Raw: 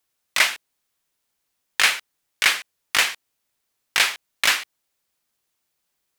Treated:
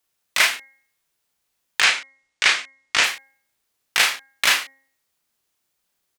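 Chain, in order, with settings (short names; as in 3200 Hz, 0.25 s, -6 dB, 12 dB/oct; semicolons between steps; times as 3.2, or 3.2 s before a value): 1.8–3.04 LPF 7900 Hz 24 dB/oct; doubler 33 ms -4 dB; de-hum 269.6 Hz, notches 8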